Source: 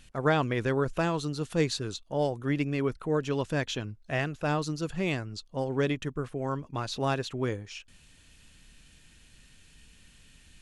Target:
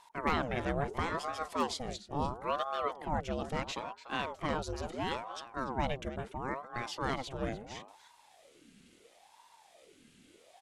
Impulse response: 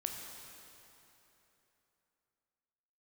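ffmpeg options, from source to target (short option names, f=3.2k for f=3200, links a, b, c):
-filter_complex "[0:a]bandreject=f=171.2:t=h:w=4,bandreject=f=342.4:t=h:w=4,bandreject=f=513.6:t=h:w=4,bandreject=f=684.8:t=h:w=4,bandreject=f=856:t=h:w=4,bandreject=f=1.0272k:t=h:w=4,bandreject=f=1.1984k:t=h:w=4,aeval=exprs='0.158*(abs(mod(val(0)/0.158+3,4)-2)-1)':c=same,asplit=2[a][b];[b]adelay=291.5,volume=-12dB,highshelf=f=4k:g=-6.56[c];[a][c]amix=inputs=2:normalize=0,aeval=exprs='val(0)*sin(2*PI*580*n/s+580*0.65/0.74*sin(2*PI*0.74*n/s))':c=same,volume=-3dB"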